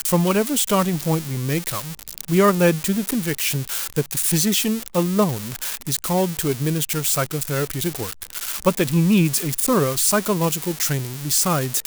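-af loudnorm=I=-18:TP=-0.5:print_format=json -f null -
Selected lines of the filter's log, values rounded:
"input_i" : "-20.2",
"input_tp" : "-5.6",
"input_lra" : "2.9",
"input_thresh" : "-30.3",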